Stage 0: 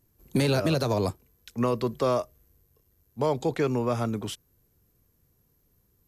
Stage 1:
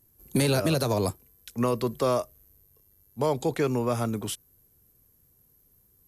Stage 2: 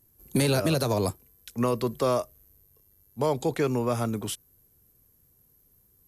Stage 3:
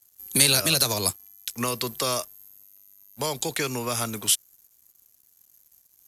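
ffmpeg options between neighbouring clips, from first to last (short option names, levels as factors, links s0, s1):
-af "equalizer=f=11000:t=o:w=0.86:g=11"
-af anull
-filter_complex "[0:a]acrossover=split=260|3000[s0][s1][s2];[s1]acompressor=threshold=0.0398:ratio=2.5[s3];[s0][s3][s2]amix=inputs=3:normalize=0,tiltshelf=f=1300:g=-9.5,aeval=exprs='sgn(val(0))*max(abs(val(0))-0.00211,0)':c=same,volume=1.88"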